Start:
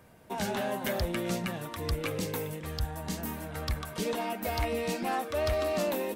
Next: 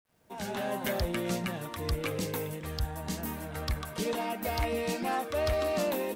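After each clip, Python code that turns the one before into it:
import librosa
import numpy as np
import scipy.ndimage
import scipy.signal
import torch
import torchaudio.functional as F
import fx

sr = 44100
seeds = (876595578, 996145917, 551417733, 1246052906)

y = fx.fade_in_head(x, sr, length_s=0.75)
y = fx.quant_dither(y, sr, seeds[0], bits=12, dither='none')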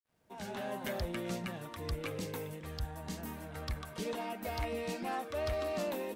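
y = fx.high_shelf(x, sr, hz=9000.0, db=-5.0)
y = F.gain(torch.from_numpy(y), -6.0).numpy()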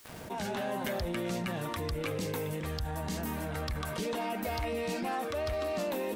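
y = fx.env_flatten(x, sr, amount_pct=70)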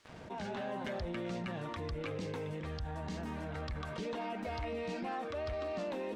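y = fx.air_absorb(x, sr, metres=110.0)
y = F.gain(torch.from_numpy(y), -4.5).numpy()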